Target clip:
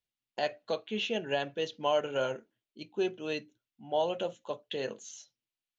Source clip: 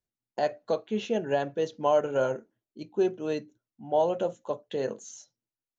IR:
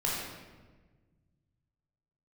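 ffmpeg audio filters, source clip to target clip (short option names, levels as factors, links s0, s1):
-af "equalizer=f=3000:w=0.96:g=13.5,volume=0.501"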